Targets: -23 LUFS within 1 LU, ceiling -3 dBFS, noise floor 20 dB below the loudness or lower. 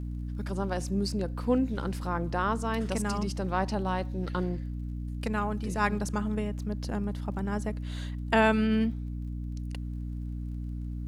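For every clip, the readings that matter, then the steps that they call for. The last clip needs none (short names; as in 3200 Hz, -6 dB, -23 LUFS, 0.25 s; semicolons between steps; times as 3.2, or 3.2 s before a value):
ticks 29/s; hum 60 Hz; harmonics up to 300 Hz; hum level -32 dBFS; loudness -31.0 LUFS; peak -12.0 dBFS; loudness target -23.0 LUFS
-> de-click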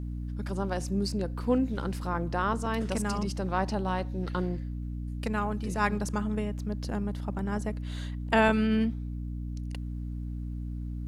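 ticks 0.18/s; hum 60 Hz; harmonics up to 300 Hz; hum level -32 dBFS
-> notches 60/120/180/240/300 Hz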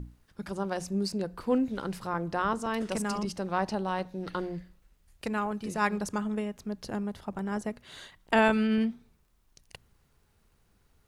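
hum none; loudness -31.0 LUFS; peak -12.5 dBFS; loudness target -23.0 LUFS
-> gain +8 dB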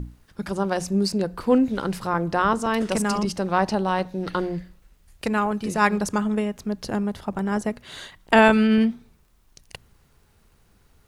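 loudness -23.0 LUFS; peak -4.5 dBFS; noise floor -60 dBFS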